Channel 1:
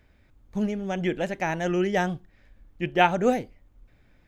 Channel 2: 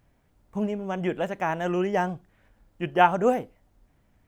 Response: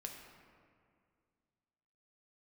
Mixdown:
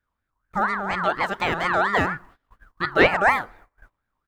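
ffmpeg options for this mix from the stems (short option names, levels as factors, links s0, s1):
-filter_complex "[0:a]volume=1.06[s0];[1:a]acontrast=31,equalizer=f=1400:w=1.7:g=-3.5,aeval=exprs='val(0)*sin(2*PI*1300*n/s+1300*0.25/4.2*sin(2*PI*4.2*n/s))':c=same,adelay=1.5,volume=1.26,asplit=3[s1][s2][s3];[s2]volume=0.0668[s4];[s3]apad=whole_len=188721[s5];[s0][s5]sidechaincompress=threshold=0.0316:ratio=8:attack=30:release=101[s6];[2:a]atrim=start_sample=2205[s7];[s4][s7]afir=irnorm=-1:irlink=0[s8];[s6][s1][s8]amix=inputs=3:normalize=0,agate=range=0.0708:threshold=0.00447:ratio=16:detection=peak,equalizer=f=2200:w=2.5:g=-3.5"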